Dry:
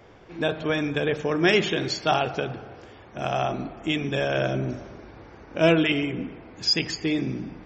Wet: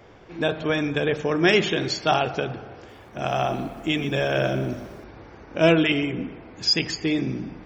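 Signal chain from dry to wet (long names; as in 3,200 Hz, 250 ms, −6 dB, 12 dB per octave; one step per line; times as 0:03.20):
0:02.76–0:05.04: feedback echo at a low word length 124 ms, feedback 35%, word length 8 bits, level −11.5 dB
level +1.5 dB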